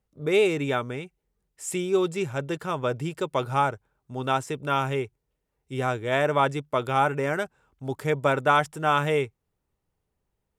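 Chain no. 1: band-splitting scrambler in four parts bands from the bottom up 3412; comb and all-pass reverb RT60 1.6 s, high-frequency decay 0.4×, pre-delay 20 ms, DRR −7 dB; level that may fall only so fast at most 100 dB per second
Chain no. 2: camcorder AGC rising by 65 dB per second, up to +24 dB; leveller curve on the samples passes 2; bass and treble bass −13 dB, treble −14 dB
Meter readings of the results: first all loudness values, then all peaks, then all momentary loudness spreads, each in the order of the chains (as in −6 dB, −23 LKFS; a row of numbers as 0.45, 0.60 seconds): −16.5, −19.5 LKFS; −2.5, −3.0 dBFS; 14, 9 LU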